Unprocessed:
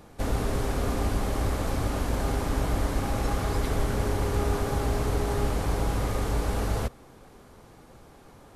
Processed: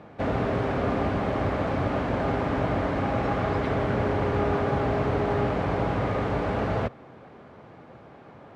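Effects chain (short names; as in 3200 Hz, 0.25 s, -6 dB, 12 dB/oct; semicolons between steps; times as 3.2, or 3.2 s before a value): Chebyshev band-pass 120–2300 Hz, order 2; bell 630 Hz +5 dB 0.37 oct; gain +4.5 dB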